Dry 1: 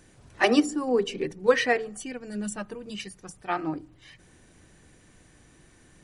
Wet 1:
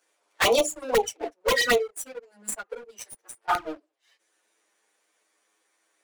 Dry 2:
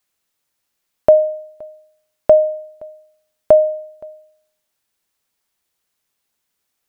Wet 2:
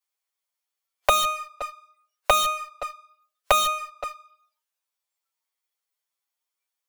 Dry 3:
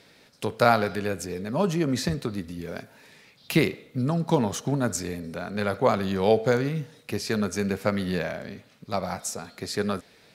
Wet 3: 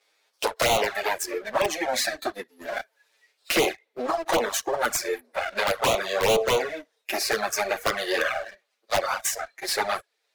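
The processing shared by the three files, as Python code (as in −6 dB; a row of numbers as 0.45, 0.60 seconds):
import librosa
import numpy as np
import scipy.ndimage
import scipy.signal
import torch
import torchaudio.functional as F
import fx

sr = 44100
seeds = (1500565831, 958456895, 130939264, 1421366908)

p1 = fx.lower_of_two(x, sr, delay_ms=8.9)
p2 = scipy.signal.sosfilt(scipy.signal.butter(4, 440.0, 'highpass', fs=sr, output='sos'), p1)
p3 = fx.noise_reduce_blind(p2, sr, reduce_db=19)
p4 = fx.leveller(p3, sr, passes=2)
p5 = (np.mod(10.0 ** (14.5 / 20.0) * p4 + 1.0, 2.0) - 1.0) / 10.0 ** (14.5 / 20.0)
p6 = p4 + (p5 * 10.0 ** (-3.5 / 20.0))
p7 = fx.env_flanger(p6, sr, rest_ms=9.8, full_db=-14.0)
y = fx.band_squash(p7, sr, depth_pct=40)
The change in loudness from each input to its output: +1.5, −8.5, +1.0 LU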